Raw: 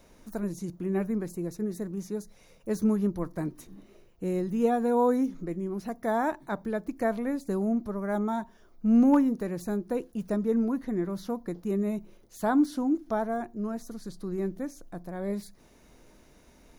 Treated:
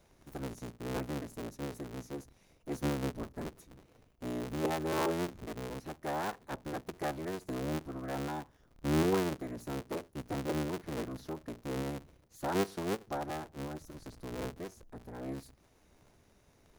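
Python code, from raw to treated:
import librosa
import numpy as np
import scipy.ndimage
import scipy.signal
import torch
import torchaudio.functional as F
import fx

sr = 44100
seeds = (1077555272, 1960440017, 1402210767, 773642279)

y = fx.cycle_switch(x, sr, every=3, mode='inverted')
y = F.gain(torch.from_numpy(y), -8.5).numpy()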